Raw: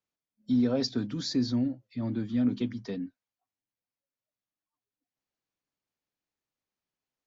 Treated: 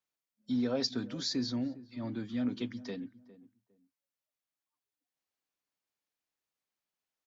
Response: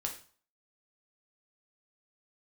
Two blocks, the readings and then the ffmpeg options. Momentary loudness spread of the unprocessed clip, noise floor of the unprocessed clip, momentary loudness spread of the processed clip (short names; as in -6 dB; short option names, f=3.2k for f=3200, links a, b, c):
10 LU, under -85 dBFS, 10 LU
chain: -filter_complex "[0:a]lowshelf=f=380:g=-9,asplit=2[a][b];[b]adelay=406,lowpass=f=990:p=1,volume=-17dB,asplit=2[c][d];[d]adelay=406,lowpass=f=990:p=1,volume=0.23[e];[c][e]amix=inputs=2:normalize=0[f];[a][f]amix=inputs=2:normalize=0"